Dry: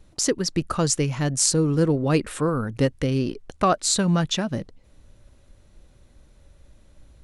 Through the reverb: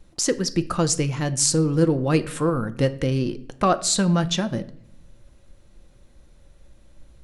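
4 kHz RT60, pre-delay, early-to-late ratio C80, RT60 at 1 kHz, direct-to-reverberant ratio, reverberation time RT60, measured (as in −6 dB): 0.50 s, 4 ms, 20.5 dB, 0.60 s, 10.0 dB, 0.65 s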